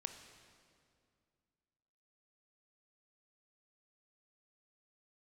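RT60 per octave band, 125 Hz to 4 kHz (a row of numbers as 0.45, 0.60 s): 2.7, 2.7, 2.4, 2.2, 1.9, 1.8 s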